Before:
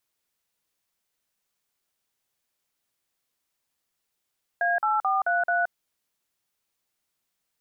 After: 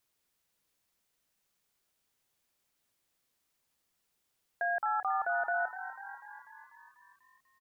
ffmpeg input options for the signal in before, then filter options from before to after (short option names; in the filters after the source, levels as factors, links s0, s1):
-f lavfi -i "aevalsrc='0.0668*clip(min(mod(t,0.218),0.173-mod(t,0.218))/0.002,0,1)*(eq(floor(t/0.218),0)*(sin(2*PI*697*mod(t,0.218))+sin(2*PI*1633*mod(t,0.218)))+eq(floor(t/0.218),1)*(sin(2*PI*852*mod(t,0.218))+sin(2*PI*1336*mod(t,0.218)))+eq(floor(t/0.218),2)*(sin(2*PI*770*mod(t,0.218))+sin(2*PI*1209*mod(t,0.218)))+eq(floor(t/0.218),3)*(sin(2*PI*697*mod(t,0.218))+sin(2*PI*1477*mod(t,0.218)))+eq(floor(t/0.218),4)*(sin(2*PI*697*mod(t,0.218))+sin(2*PI*1477*mod(t,0.218))))':d=1.09:s=44100"
-filter_complex "[0:a]lowshelf=f=320:g=3.5,alimiter=level_in=1.12:limit=0.0631:level=0:latency=1:release=11,volume=0.891,asplit=9[s0][s1][s2][s3][s4][s5][s6][s7][s8];[s1]adelay=246,afreqshift=46,volume=0.251[s9];[s2]adelay=492,afreqshift=92,volume=0.16[s10];[s3]adelay=738,afreqshift=138,volume=0.102[s11];[s4]adelay=984,afreqshift=184,volume=0.0661[s12];[s5]adelay=1230,afreqshift=230,volume=0.0422[s13];[s6]adelay=1476,afreqshift=276,volume=0.0269[s14];[s7]adelay=1722,afreqshift=322,volume=0.0172[s15];[s8]adelay=1968,afreqshift=368,volume=0.0111[s16];[s0][s9][s10][s11][s12][s13][s14][s15][s16]amix=inputs=9:normalize=0"